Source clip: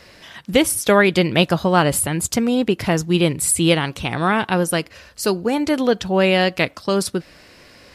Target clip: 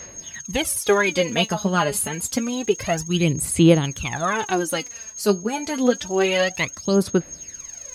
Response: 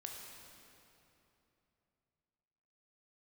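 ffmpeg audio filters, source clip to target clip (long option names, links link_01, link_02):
-af "aeval=exprs='val(0)+0.0282*sin(2*PI*6500*n/s)':channel_layout=same,aphaser=in_gain=1:out_gain=1:delay=4.9:decay=0.7:speed=0.28:type=sinusoidal,volume=-6.5dB"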